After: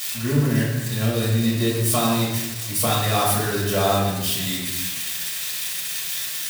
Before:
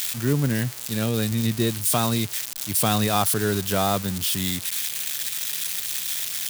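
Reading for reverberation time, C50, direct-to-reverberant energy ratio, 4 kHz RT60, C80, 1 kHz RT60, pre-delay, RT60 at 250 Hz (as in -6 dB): 1.1 s, 1.5 dB, -7.0 dB, 0.85 s, 3.5 dB, 0.95 s, 3 ms, 1.3 s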